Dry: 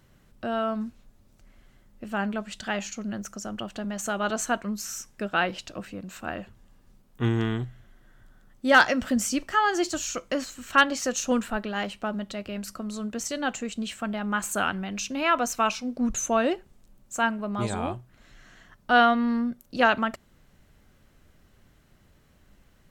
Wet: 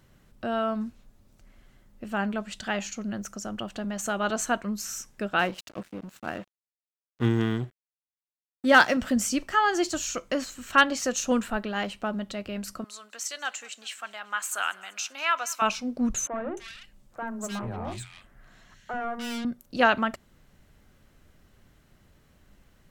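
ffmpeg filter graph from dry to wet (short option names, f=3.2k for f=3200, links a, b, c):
-filter_complex "[0:a]asettb=1/sr,asplit=3[a][b][c];[a]atrim=end=5.394[d];[b]atrim=start=5.39:end=8.97,asetpts=PTS-STARTPTS,afade=t=in:d=0.004:c=qsin,afade=t=out:st=3.576:d=0.004:c=qsin,highpass=120,lowshelf=f=290:g=4.5,aeval=exprs='sgn(val(0))*max(abs(val(0))-0.0075,0)':c=same[e];[c]atrim=start=8.966[f];[d][e]acrossfade=d=0.004:c1=hsin:c2=qsin[g];[g][f]acrossfade=d=0.004:c1=qsin:c2=hsin,asettb=1/sr,asplit=3[h][i][j];[h]atrim=end=12.844[k];[i]atrim=start=12.84:end=15.62,asetpts=PTS-STARTPTS,afade=t=in:d=0.004:c=qsin,afade=t=out:st=2.776:d=0.004:c=qsin,highpass=1.1k,aecho=1:1:194|388|582|776:0.0794|0.0437|0.024|0.0132,atrim=end_sample=122598[l];[j]atrim=start=15.616[m];[k][l]acrossfade=d=0.004:c1=hsin:c2=qsin[n];[n][m]acrossfade=d=0.004:c1=qsin:c2=hsin,asettb=1/sr,asplit=3[o][p][q];[o]atrim=end=16.274[r];[p]atrim=start=16.27:end=19.45,asetpts=PTS-STARTPTS,afade=t=in:d=0.004:c=qsin,afade=t=out:st=3.176:d=0.004:c=qsin,aeval=exprs='(tanh(25.1*val(0)+0.25)-tanh(0.25))/25.1':c=same,acrossover=split=320|1800[s][t][u];[s]adelay=40[v];[u]adelay=300[w];[v][t][w]amix=inputs=3:normalize=0,atrim=end_sample=140238[x];[q]atrim=start=19.446[y];[r][x]acrossfade=d=0.004:c1=hsin:c2=qsin[z];[z][y]acrossfade=d=0.004:c1=qsin:c2=hsin"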